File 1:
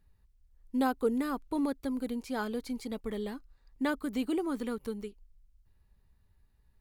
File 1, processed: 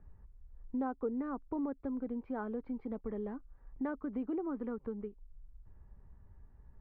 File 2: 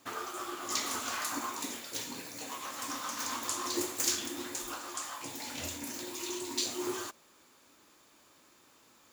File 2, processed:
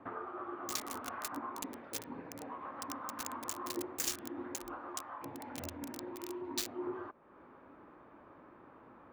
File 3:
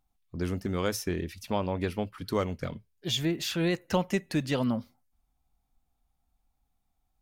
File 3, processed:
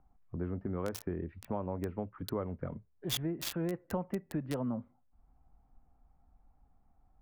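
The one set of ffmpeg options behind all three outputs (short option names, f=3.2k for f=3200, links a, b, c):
-filter_complex "[0:a]acompressor=threshold=-57dB:ratio=2,acrossover=split=230|1600[a][b][c];[c]acrusher=bits=6:mix=0:aa=0.000001[d];[a][b][d]amix=inputs=3:normalize=0,volume=10dB"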